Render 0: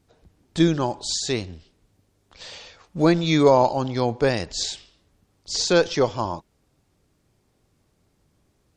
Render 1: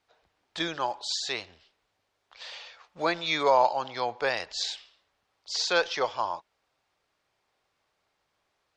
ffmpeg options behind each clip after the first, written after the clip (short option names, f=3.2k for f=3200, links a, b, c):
-filter_complex "[0:a]acrossover=split=600 5000:gain=0.0708 1 0.178[a][b][c];[a][b][c]amix=inputs=3:normalize=0"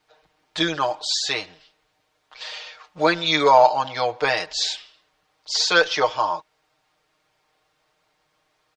-af "aecho=1:1:6.5:0.85,volume=5.5dB"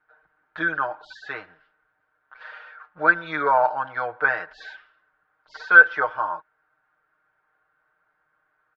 -af "lowpass=f=1.5k:t=q:w=8.8,volume=-8.5dB"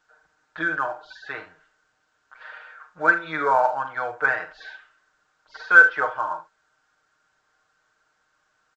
-af "aecho=1:1:44|74:0.316|0.168,volume=-1dB" -ar 16000 -c:a pcm_alaw